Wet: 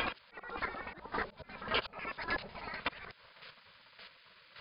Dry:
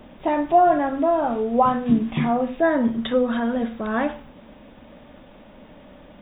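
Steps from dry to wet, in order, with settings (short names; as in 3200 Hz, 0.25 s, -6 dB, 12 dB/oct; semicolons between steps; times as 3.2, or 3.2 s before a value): slices in reverse order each 84 ms, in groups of 5; tone controls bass -2 dB, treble -3 dB; auto swell 0.285 s; in parallel at -2 dB: compressor, threshold -35 dBFS, peak gain reduction 19 dB; on the sum: spectral gate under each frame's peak -15 dB weak; chopper 1.3 Hz, depth 65%, duty 15%; speed mistake 33 rpm record played at 45 rpm; gain +1 dB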